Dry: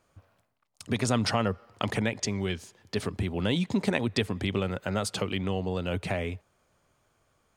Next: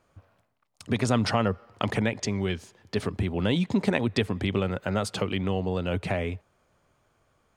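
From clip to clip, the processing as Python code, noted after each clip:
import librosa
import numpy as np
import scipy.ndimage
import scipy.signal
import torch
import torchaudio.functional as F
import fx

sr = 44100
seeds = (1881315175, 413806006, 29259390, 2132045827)

y = fx.high_shelf(x, sr, hz=4100.0, db=-6.5)
y = y * librosa.db_to_amplitude(2.5)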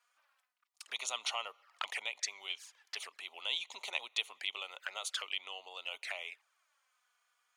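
y = fx.env_flanger(x, sr, rest_ms=4.2, full_db=-24.5)
y = scipy.signal.sosfilt(scipy.signal.bessel(4, 1500.0, 'highpass', norm='mag', fs=sr, output='sos'), y)
y = y * librosa.db_to_amplitude(1.0)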